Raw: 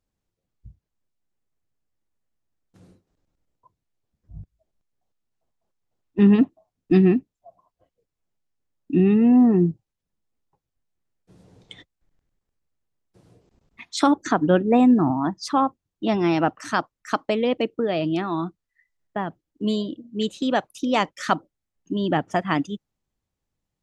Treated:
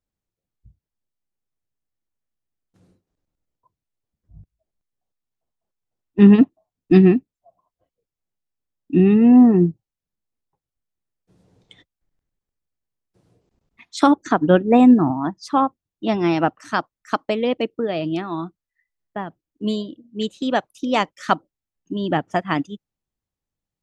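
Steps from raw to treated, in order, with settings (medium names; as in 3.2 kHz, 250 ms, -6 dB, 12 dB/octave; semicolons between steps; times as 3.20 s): upward expansion 1.5:1, over -34 dBFS; trim +5.5 dB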